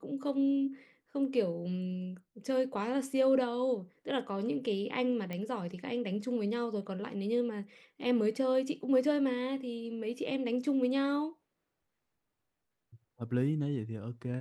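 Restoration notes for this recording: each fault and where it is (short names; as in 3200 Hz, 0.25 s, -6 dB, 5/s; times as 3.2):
5.33 pop -25 dBFS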